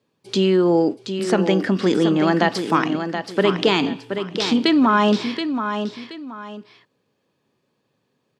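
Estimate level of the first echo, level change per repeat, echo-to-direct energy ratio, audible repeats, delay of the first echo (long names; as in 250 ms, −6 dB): −8.0 dB, −10.5 dB, −7.5 dB, 2, 726 ms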